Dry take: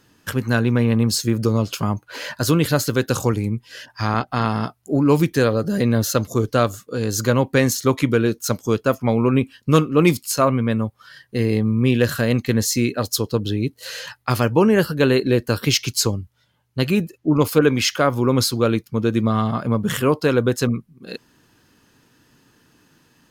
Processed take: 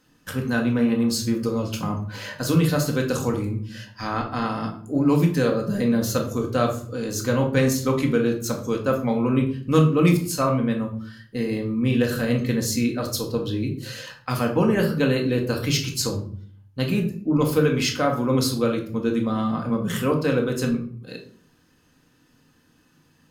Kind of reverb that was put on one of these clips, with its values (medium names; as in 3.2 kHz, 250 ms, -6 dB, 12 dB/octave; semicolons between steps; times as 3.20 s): simulated room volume 570 m³, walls furnished, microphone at 2 m; trim -7 dB